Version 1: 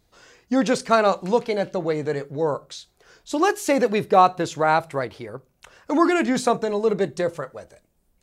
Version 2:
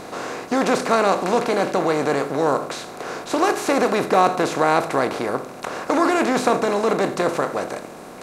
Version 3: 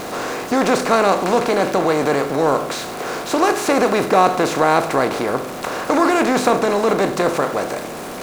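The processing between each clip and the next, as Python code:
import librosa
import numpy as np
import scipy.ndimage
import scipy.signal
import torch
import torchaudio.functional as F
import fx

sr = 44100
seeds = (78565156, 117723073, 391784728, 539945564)

y1 = fx.bin_compress(x, sr, power=0.4)
y1 = y1 * 10.0 ** (-4.0 / 20.0)
y2 = y1 + 0.5 * 10.0 ** (-30.5 / 20.0) * np.sign(y1)
y2 = y2 * 10.0 ** (2.0 / 20.0)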